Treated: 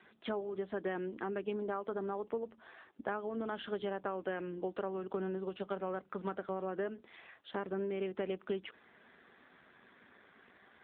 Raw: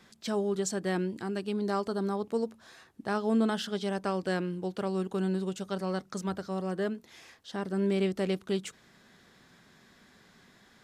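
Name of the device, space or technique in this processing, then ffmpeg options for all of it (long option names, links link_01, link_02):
voicemail: -filter_complex "[0:a]asplit=3[link_01][link_02][link_03];[link_01]afade=type=out:start_time=6.73:duration=0.02[link_04];[link_02]highshelf=frequency=7400:gain=4.5,afade=type=in:start_time=6.73:duration=0.02,afade=type=out:start_time=7.74:duration=0.02[link_05];[link_03]afade=type=in:start_time=7.74:duration=0.02[link_06];[link_04][link_05][link_06]amix=inputs=3:normalize=0,highpass=310,lowpass=2900,acompressor=threshold=-35dB:ratio=10,volume=3dB" -ar 8000 -c:a libopencore_amrnb -b:a 7400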